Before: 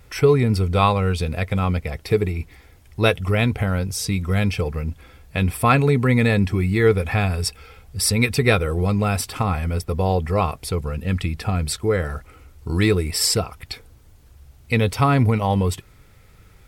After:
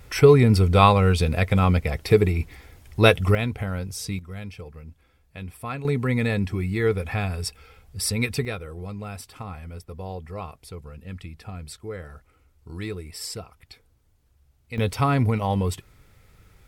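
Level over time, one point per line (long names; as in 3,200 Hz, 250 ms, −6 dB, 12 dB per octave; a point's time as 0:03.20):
+2 dB
from 0:03.35 −7 dB
from 0:04.19 −16 dB
from 0:05.85 −6 dB
from 0:08.45 −14.5 dB
from 0:14.78 −4 dB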